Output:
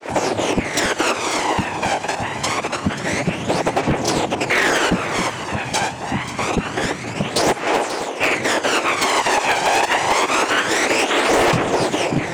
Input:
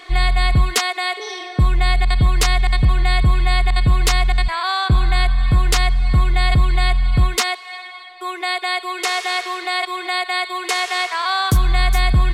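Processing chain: band shelf 700 Hz +9 dB 1.2 oct; in parallel at -3 dB: limiter -14.5 dBFS, peak gain reduction 10.5 dB; on the sum: compressor 12:1, threshold -15 dBFS, peak gain reduction 8.5 dB; noise vocoder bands 4; phaser 0.26 Hz, delay 1.3 ms, feedback 53%; grains 0.183 s, grains 12/s, spray 27 ms, pitch spread up and down by 0 st; wavefolder -12.5 dBFS; echo with dull and thin repeats by turns 0.268 s, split 1400 Hz, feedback 56%, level -7.5 dB; gain +3 dB

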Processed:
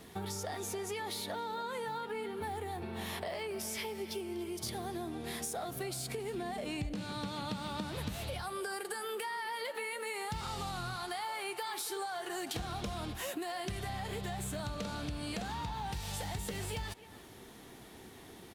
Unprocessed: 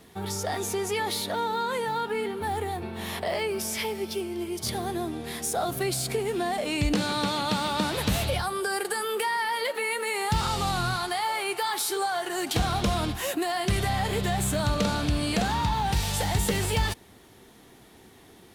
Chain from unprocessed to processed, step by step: 6.34–8.09 tone controls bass +8 dB, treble -1 dB; compressor 6:1, threshold -37 dBFS, peak gain reduction 21 dB; speakerphone echo 0.28 s, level -14 dB

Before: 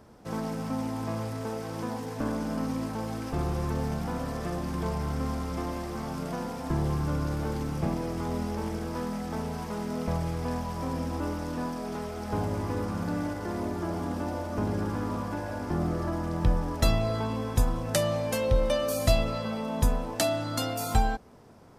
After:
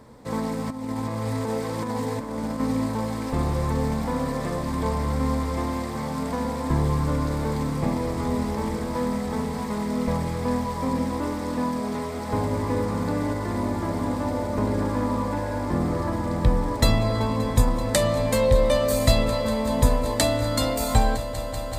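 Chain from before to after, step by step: ripple EQ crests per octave 1, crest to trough 7 dB; 0.67–2.6 negative-ratio compressor -32 dBFS, ratio -0.5; swelling echo 0.192 s, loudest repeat 5, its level -18 dB; gain +4.5 dB

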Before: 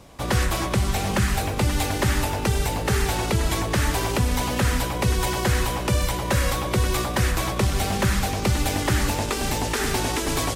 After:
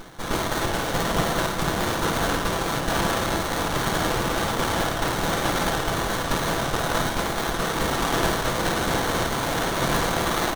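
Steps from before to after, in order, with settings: rattling part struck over -21 dBFS, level -24 dBFS; HPF 170 Hz 24 dB/oct; spectral gate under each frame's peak -15 dB weak; bell 2300 Hz +11 dB 0.49 oct; in parallel at +2 dB: soft clip -31.5 dBFS, distortion -8 dB; on the sum: notch 2000 Hz, Q 8.1; comb 6 ms, depth 76%; flutter echo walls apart 9.2 m, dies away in 0.67 s; reverse; upward compressor, threshold -27 dBFS; reverse; running maximum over 17 samples; gain +3.5 dB

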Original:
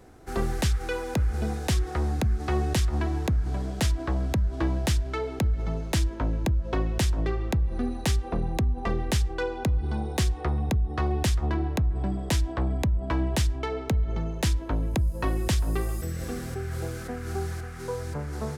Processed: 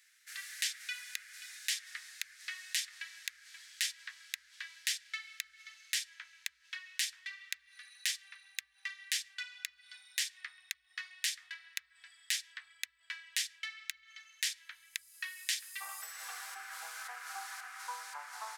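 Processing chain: elliptic high-pass 1800 Hz, stop band 70 dB, from 15.8 s 860 Hz

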